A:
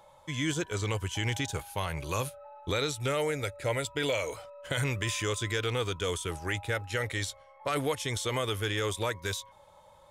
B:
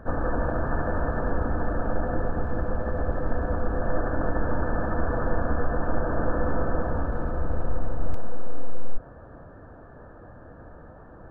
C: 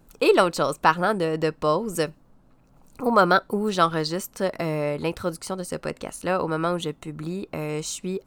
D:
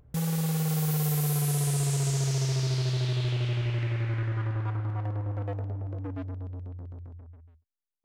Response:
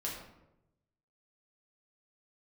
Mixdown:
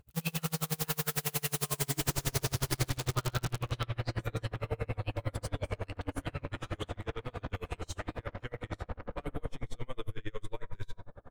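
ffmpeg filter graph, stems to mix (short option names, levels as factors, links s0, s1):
-filter_complex "[0:a]bass=f=250:g=6,treble=f=4000:g=-14,adelay=1500,volume=0.447,asplit=2[s0][s1];[s1]volume=0.501[s2];[1:a]aeval=exprs='(tanh(39.8*val(0)+0.65)-tanh(0.65))/39.8':c=same,adelay=1950,volume=0.75,asplit=2[s3][s4];[s4]volume=0.501[s5];[2:a]highpass=950,equalizer=f=2900:t=o:w=1.3:g=12,volume=0.2,asplit=2[s6][s7];[s7]volume=0.355[s8];[3:a]aeval=exprs='(mod(14.1*val(0)+1,2)-1)/14.1':c=same,volume=0.891[s9];[s0][s6]amix=inputs=2:normalize=0,highshelf=f=8800:g=11.5,acompressor=threshold=0.0126:ratio=6,volume=1[s10];[4:a]atrim=start_sample=2205[s11];[s2][s5][s8]amix=inputs=3:normalize=0[s12];[s12][s11]afir=irnorm=-1:irlink=0[s13];[s3][s9][s10][s13]amix=inputs=4:normalize=0,aeval=exprs='val(0)*pow(10,-34*(0.5-0.5*cos(2*PI*11*n/s))/20)':c=same"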